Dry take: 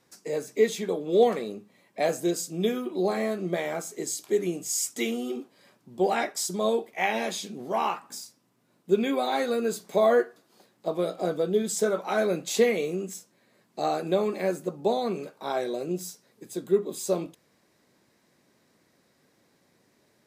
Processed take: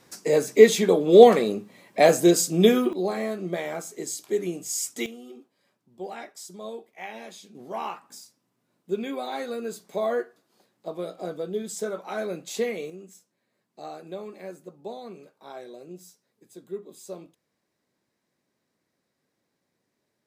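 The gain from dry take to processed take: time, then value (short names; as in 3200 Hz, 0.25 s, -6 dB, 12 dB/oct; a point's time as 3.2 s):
+9 dB
from 2.93 s -1 dB
from 5.06 s -12 dB
from 7.55 s -5.5 dB
from 12.9 s -12 dB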